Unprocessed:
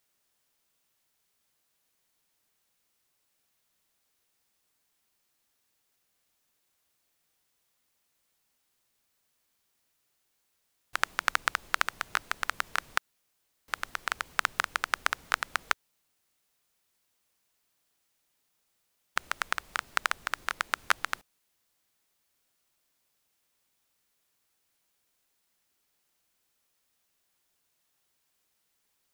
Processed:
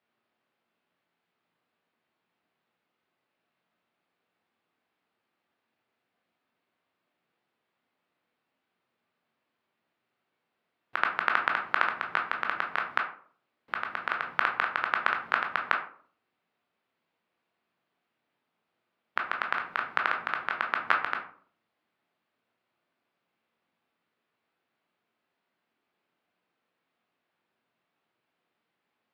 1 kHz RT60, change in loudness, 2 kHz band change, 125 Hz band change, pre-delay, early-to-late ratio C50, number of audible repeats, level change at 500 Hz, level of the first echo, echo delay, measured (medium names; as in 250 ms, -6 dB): 0.45 s, +2.0 dB, +2.5 dB, +0.5 dB, 14 ms, 8.5 dB, no echo, +4.5 dB, no echo, no echo